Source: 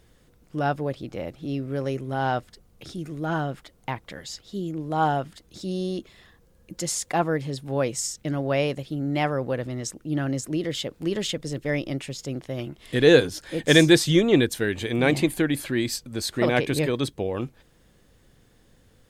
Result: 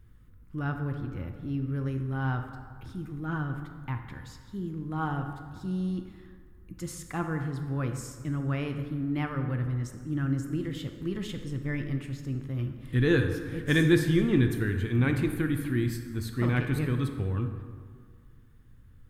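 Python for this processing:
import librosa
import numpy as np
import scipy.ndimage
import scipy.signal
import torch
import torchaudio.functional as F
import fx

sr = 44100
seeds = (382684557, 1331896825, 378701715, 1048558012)

y = fx.curve_eq(x, sr, hz=(110.0, 160.0, 270.0, 630.0, 1200.0, 4900.0, 7300.0, 14000.0), db=(0, -9, -9, -25, -9, -23, -22, -12))
y = fx.rev_plate(y, sr, seeds[0], rt60_s=1.9, hf_ratio=0.55, predelay_ms=0, drr_db=5.5)
y = F.gain(torch.from_numpy(y), 5.5).numpy()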